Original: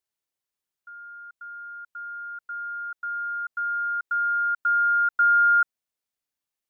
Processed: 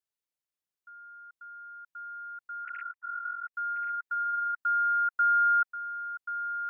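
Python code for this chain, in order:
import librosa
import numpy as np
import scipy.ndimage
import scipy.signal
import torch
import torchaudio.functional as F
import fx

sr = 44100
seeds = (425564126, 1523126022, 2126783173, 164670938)

p1 = fx.sine_speech(x, sr, at=(2.65, 3.54))
p2 = p1 + fx.echo_feedback(p1, sr, ms=1083, feedback_pct=26, wet_db=-10, dry=0)
y = F.gain(torch.from_numpy(p2), -6.5).numpy()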